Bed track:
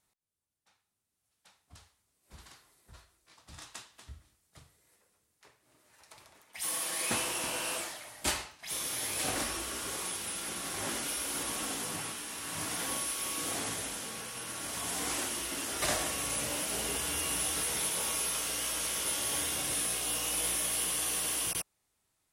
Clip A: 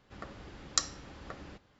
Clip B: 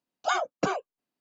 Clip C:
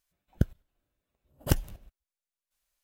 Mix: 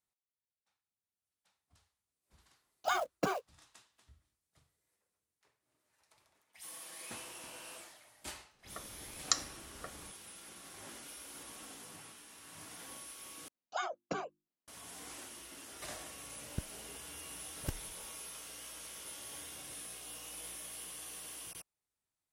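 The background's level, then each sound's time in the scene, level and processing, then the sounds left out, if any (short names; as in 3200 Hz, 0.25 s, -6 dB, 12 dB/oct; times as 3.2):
bed track -14.5 dB
2.6 add B -6 dB + short-mantissa float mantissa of 2-bit
8.54 add A -1.5 dB + spectral noise reduction 6 dB
13.48 replace with B -11 dB + notches 50/100/150/200/250/300/350 Hz
16.17 add C -14.5 dB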